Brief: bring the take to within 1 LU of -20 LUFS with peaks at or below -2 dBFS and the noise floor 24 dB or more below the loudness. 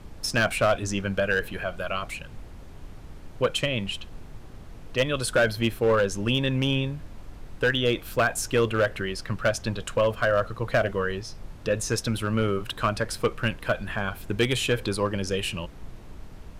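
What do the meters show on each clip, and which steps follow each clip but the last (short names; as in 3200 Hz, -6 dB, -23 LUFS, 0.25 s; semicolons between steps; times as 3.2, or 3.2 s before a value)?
clipped 0.6%; flat tops at -15.0 dBFS; noise floor -44 dBFS; noise floor target -50 dBFS; loudness -26.0 LUFS; peak -15.0 dBFS; loudness target -20.0 LUFS
-> clip repair -15 dBFS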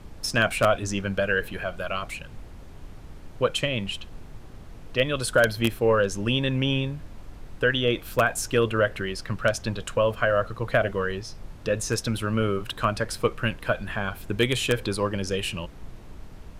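clipped 0.0%; noise floor -44 dBFS; noise floor target -50 dBFS
-> noise print and reduce 6 dB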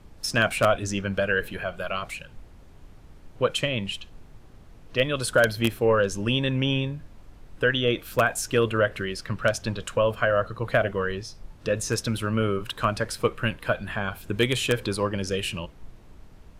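noise floor -50 dBFS; loudness -25.5 LUFS; peak -6.0 dBFS; loudness target -20.0 LUFS
-> gain +5.5 dB; limiter -2 dBFS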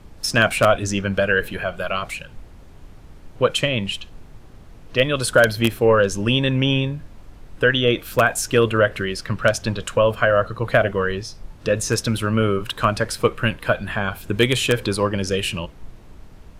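loudness -20.0 LUFS; peak -2.0 dBFS; noise floor -44 dBFS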